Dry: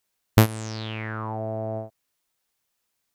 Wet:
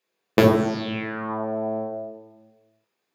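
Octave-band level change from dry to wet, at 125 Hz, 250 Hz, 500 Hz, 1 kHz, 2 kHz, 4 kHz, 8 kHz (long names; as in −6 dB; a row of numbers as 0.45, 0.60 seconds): −4.5 dB, +6.0 dB, +8.0 dB, +3.5 dB, +3.0 dB, +0.5 dB, can't be measured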